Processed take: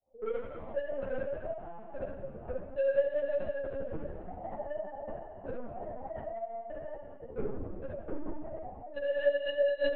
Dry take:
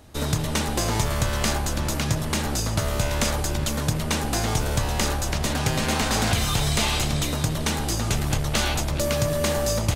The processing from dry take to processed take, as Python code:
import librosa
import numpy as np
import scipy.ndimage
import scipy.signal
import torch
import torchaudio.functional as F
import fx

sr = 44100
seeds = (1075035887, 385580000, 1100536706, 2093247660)

p1 = fx.sine_speech(x, sr)
p2 = scipy.signal.sosfilt(scipy.signal.bessel(2, 230.0, 'highpass', norm='mag', fs=sr, output='sos'), p1)
p3 = fx.hum_notches(p2, sr, base_hz=60, count=7)
p4 = fx.rider(p3, sr, range_db=4, speed_s=2.0)
p5 = p3 + (p4 * 10.0 ** (-2.0 / 20.0))
p6 = np.clip(10.0 ** (12.0 / 20.0) * p5, -1.0, 1.0) / 10.0 ** (12.0 / 20.0)
p7 = fx.granulator(p6, sr, seeds[0], grain_ms=122.0, per_s=22.0, spray_ms=100.0, spread_st=0)
p8 = scipy.signal.sosfilt(scipy.signal.ellip(4, 1.0, 60, 560.0, 'lowpass', fs=sr, output='sos'), p7)
p9 = 10.0 ** (-26.5 / 20.0) * np.tanh(p8 / 10.0 ** (-26.5 / 20.0))
p10 = fx.room_early_taps(p9, sr, ms=(16, 44, 66, 79), db=(-13.0, -6.5, -5.0, -15.0))
p11 = fx.rev_schroeder(p10, sr, rt60_s=2.5, comb_ms=26, drr_db=4.0)
p12 = fx.lpc_vocoder(p11, sr, seeds[1], excitation='pitch_kept', order=8)
y = fx.ensemble(p12, sr)